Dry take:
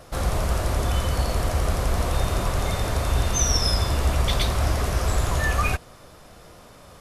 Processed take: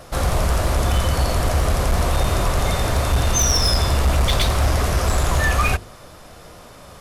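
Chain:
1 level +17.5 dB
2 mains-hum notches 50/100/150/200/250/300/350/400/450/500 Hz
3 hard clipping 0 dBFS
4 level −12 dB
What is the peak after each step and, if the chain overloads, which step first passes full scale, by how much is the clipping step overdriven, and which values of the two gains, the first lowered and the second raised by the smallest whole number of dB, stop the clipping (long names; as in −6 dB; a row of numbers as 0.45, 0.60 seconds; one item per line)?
+10.0, +9.0, 0.0, −12.0 dBFS
step 1, 9.0 dB
step 1 +8.5 dB, step 4 −3 dB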